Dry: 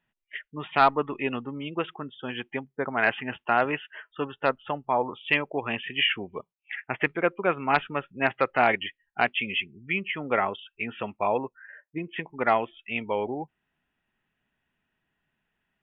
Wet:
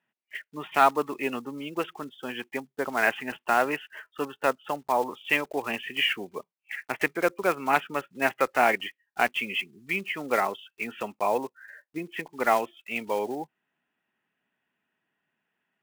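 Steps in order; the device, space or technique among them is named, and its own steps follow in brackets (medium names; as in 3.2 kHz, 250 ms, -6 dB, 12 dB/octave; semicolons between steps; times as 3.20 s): early digital voice recorder (band-pass 210–3500 Hz; block-companded coder 5-bit)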